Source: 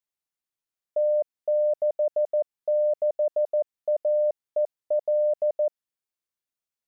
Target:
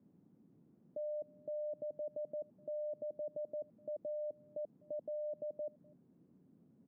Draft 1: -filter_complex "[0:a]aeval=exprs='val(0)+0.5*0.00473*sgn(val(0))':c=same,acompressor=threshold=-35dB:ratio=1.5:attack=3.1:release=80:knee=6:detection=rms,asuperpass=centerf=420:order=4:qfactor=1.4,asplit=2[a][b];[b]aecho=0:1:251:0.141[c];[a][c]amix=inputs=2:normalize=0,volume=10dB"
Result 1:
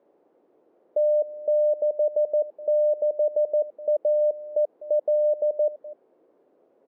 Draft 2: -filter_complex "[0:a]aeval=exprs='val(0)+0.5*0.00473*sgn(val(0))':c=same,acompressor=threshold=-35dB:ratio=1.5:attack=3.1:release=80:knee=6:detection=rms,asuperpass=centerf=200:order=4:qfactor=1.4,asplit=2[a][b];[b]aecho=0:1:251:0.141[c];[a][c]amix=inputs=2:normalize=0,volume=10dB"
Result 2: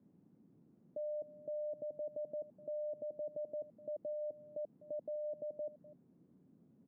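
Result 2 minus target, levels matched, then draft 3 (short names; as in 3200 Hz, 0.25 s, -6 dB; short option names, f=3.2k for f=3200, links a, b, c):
echo-to-direct +8 dB
-filter_complex "[0:a]aeval=exprs='val(0)+0.5*0.00473*sgn(val(0))':c=same,acompressor=threshold=-35dB:ratio=1.5:attack=3.1:release=80:knee=6:detection=rms,asuperpass=centerf=200:order=4:qfactor=1.4,asplit=2[a][b];[b]aecho=0:1:251:0.0562[c];[a][c]amix=inputs=2:normalize=0,volume=10dB"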